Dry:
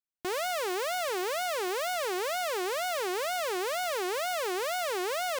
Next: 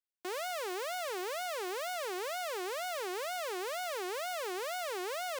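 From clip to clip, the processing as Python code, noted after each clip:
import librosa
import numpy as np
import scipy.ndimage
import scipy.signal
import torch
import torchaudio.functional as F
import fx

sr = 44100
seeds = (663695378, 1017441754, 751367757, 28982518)

y = scipy.signal.sosfilt(scipy.signal.butter(4, 270.0, 'highpass', fs=sr, output='sos'), x)
y = F.gain(torch.from_numpy(y), -6.0).numpy()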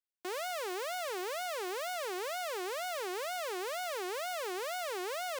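y = x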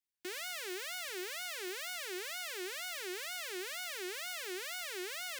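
y = fx.band_shelf(x, sr, hz=740.0, db=-15.5, octaves=1.7)
y = F.gain(torch.from_numpy(y), 1.0).numpy()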